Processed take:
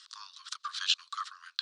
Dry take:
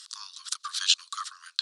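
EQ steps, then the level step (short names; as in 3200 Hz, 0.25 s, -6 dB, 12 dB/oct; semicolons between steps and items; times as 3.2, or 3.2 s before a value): air absorption 82 m; high shelf 4300 Hz -7 dB; 0.0 dB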